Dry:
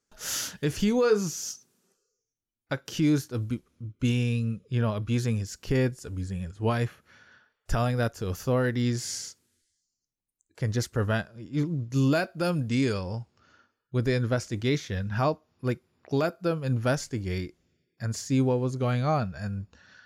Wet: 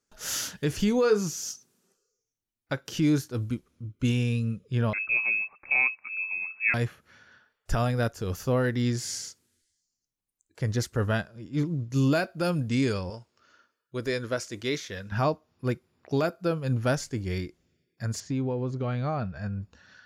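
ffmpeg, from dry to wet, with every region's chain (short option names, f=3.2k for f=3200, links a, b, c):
-filter_complex "[0:a]asettb=1/sr,asplit=3[a][b][c];[a]atrim=end=4.934[d];[b]atrim=start=4.93:end=6.74,asetpts=PTS-STARTPTS,afade=t=in:d=0.004:c=qsin,afade=t=out:st=1.806:d=0.004:c=qsin,highpass=42,lowpass=f=2.3k:t=q:w=0.5098,lowpass=f=2.3k:t=q:w=0.6013,lowpass=f=2.3k:t=q:w=0.9,lowpass=f=2.3k:t=q:w=2.563,afreqshift=-2700[e];[c]atrim=start=6.736[f];[d][e]acrossfade=d=0.004:c1=hsin:c2=qsin[g];[g][f]acrossfade=d=0.004:c1=qsin:c2=hsin,asettb=1/sr,asplit=3[h][i][j];[h]atrim=end=13.104[k];[i]atrim=start=13.1:end=15.12,asetpts=PTS-STARTPTS,afade=t=in:d=0.004:c=qsin,afade=t=out:st=2.016:d=0.004:c=qsin,bass=f=250:g=-12,treble=f=4k:g=2,bandreject=f=790:w=5.7[l];[j]atrim=start=15.116[m];[k][l]acrossfade=d=0.004:c1=hsin:c2=qsin[n];[n][m]acrossfade=d=0.004:c1=qsin:c2=hsin,asettb=1/sr,asplit=3[o][p][q];[o]atrim=end=18.204[r];[p]atrim=start=18.2:end=19.62,asetpts=PTS-STARTPTS,afade=t=in:d=0.004:c=qsin,afade=t=out:st=1.416:d=0.004:c=qsin,lowpass=4.8k,highshelf=f=3.8k:g=-5.5,acompressor=threshold=-25dB:ratio=4:attack=3.2:release=140:knee=1:detection=peak[s];[q]atrim=start=19.616[t];[r][s]acrossfade=d=0.004:c1=hsin:c2=qsin[u];[u][t]acrossfade=d=0.004:c1=qsin:c2=hsin"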